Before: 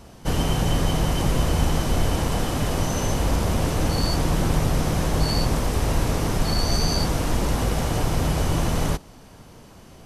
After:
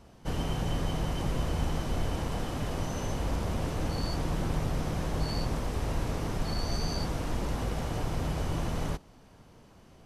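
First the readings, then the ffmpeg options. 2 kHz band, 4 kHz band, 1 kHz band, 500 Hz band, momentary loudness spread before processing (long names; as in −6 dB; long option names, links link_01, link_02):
−9.5 dB, −11.0 dB, −9.0 dB, −9.0 dB, 2 LU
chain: -af "highshelf=frequency=6100:gain=-7.5,volume=-9dB"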